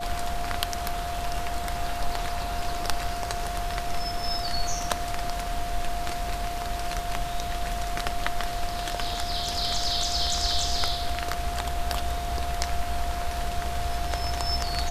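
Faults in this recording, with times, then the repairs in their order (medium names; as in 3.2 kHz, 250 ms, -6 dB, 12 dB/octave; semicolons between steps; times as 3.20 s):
whine 700 Hz -32 dBFS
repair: band-stop 700 Hz, Q 30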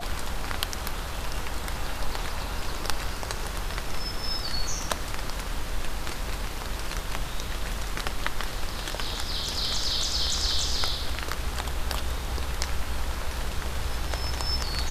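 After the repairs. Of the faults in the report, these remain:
nothing left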